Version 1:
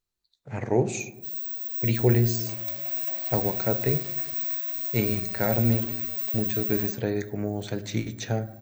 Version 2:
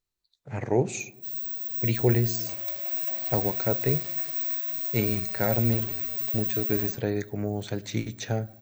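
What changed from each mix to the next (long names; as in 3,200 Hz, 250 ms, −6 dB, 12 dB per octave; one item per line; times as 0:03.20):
speech: send −7.0 dB
background: remove high-pass filter 140 Hz 24 dB per octave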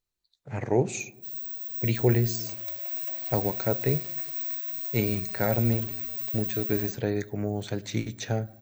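background: send −6.5 dB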